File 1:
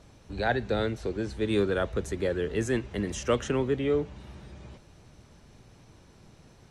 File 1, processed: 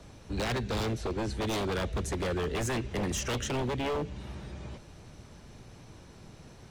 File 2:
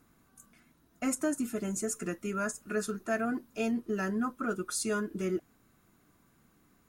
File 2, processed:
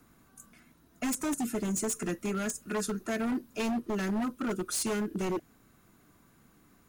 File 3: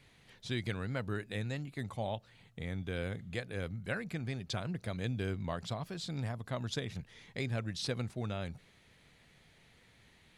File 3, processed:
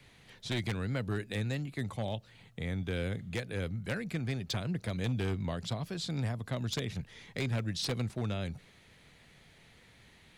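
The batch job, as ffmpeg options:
-filter_complex "[0:a]acrossover=split=150|570|1800[s0][s1][s2][s3];[s1]alimiter=level_in=1.26:limit=0.0631:level=0:latency=1:release=126,volume=0.794[s4];[s2]acompressor=threshold=0.00316:ratio=5[s5];[s0][s4][s5][s3]amix=inputs=4:normalize=0,aeval=exprs='0.0335*(abs(mod(val(0)/0.0335+3,4)-2)-1)':c=same,volume=1.58"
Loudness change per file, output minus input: -3.5 LU, +1.0 LU, +3.0 LU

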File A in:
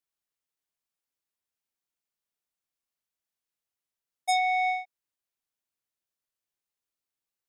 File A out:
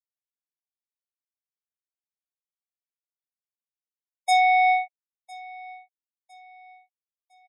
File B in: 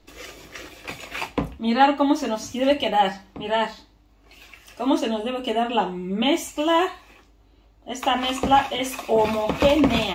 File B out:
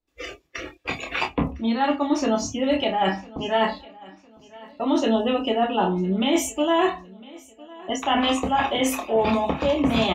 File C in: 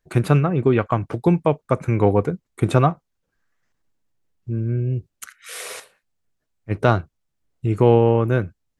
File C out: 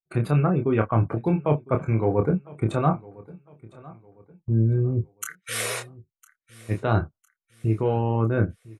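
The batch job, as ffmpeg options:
-filter_complex "[0:a]agate=range=0.224:threshold=0.00891:ratio=16:detection=peak,afftdn=nr=22:nf=-41,adynamicequalizer=threshold=0.0141:dfrequency=3000:dqfactor=0.76:tfrequency=3000:tqfactor=0.76:attack=5:release=100:ratio=0.375:range=2:mode=cutabove:tftype=bell,areverse,acompressor=threshold=0.0631:ratio=12,areverse,asplit=2[s0][s1];[s1]adelay=27,volume=0.531[s2];[s0][s2]amix=inputs=2:normalize=0,aecho=1:1:1006|2012|3018:0.0794|0.0294|0.0109,volume=1.88"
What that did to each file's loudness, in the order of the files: +6.5 LU, -1.0 LU, -4.5 LU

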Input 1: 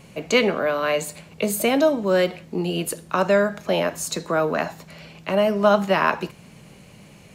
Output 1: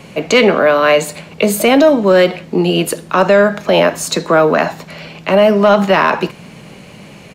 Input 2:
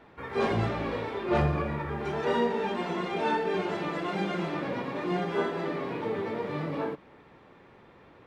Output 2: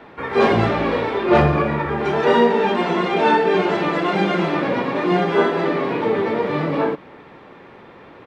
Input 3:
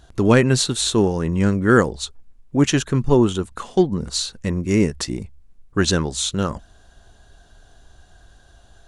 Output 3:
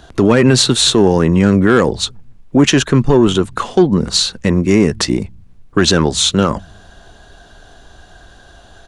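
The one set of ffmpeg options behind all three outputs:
-filter_complex "[0:a]acrossover=split=160|5100[s0][s1][s2];[s0]aecho=1:1:182|364|546:0.158|0.0571|0.0205[s3];[s1]acontrast=73[s4];[s3][s4][s2]amix=inputs=3:normalize=0,alimiter=level_in=2.11:limit=0.891:release=50:level=0:latency=1,volume=0.891"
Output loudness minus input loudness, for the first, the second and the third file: +9.5 LU, +11.5 LU, +6.5 LU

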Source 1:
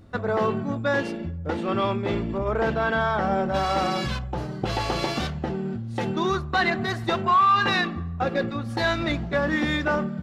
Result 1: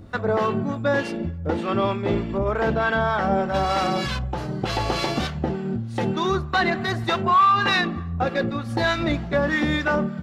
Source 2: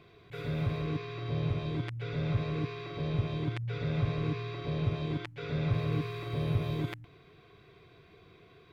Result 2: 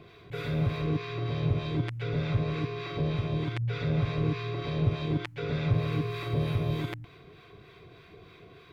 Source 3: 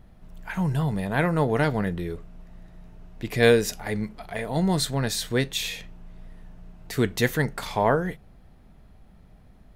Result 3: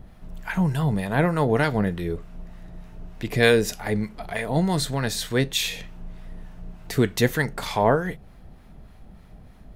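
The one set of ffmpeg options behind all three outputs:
-filter_complex "[0:a]asplit=2[s0][s1];[s1]acompressor=threshold=0.0158:ratio=6,volume=0.75[s2];[s0][s2]amix=inputs=2:normalize=0,acrossover=split=850[s3][s4];[s3]aeval=exprs='val(0)*(1-0.5/2+0.5/2*cos(2*PI*3.3*n/s))':c=same[s5];[s4]aeval=exprs='val(0)*(1-0.5/2-0.5/2*cos(2*PI*3.3*n/s))':c=same[s6];[s5][s6]amix=inputs=2:normalize=0,volume=1.41"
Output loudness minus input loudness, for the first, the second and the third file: +2.0 LU, +3.0 LU, +1.5 LU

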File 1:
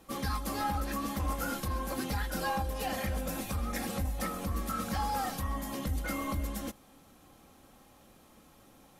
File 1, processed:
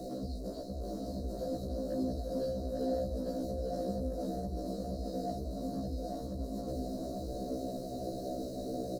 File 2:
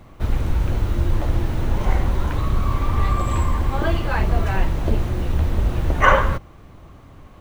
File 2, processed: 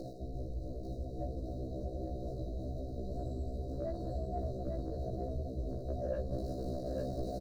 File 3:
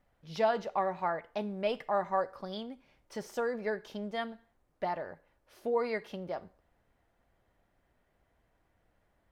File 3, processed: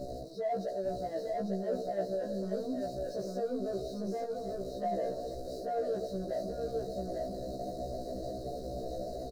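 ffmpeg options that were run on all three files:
-filter_complex "[0:a]aeval=exprs='val(0)+0.5*0.0376*sgn(val(0))':c=same,afftfilt=real='re*(1-between(b*sr/4096,730,3800))':imag='im*(1-between(b*sr/4096,730,3800))':win_size=4096:overlap=0.75,acrossover=split=3200[s0][s1];[s1]acompressor=threshold=0.00447:ratio=4:attack=1:release=60[s2];[s0][s2]amix=inputs=2:normalize=0,equalizer=f=2200:w=3.5:g=-5,areverse,acompressor=threshold=0.0316:ratio=5,areverse,asplit=2[s3][s4];[s4]highpass=f=720:p=1,volume=5.01,asoftclip=type=tanh:threshold=0.0944[s5];[s3][s5]amix=inputs=2:normalize=0,lowpass=f=1500:p=1,volume=0.501,asplit=2[s6][s7];[s7]aecho=0:1:848:0.668[s8];[s6][s8]amix=inputs=2:normalize=0,afftfilt=real='re*1.73*eq(mod(b,3),0)':imag='im*1.73*eq(mod(b,3),0)':win_size=2048:overlap=0.75,volume=0.841"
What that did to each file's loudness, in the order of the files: -3.5 LU, -18.0 LU, -2.0 LU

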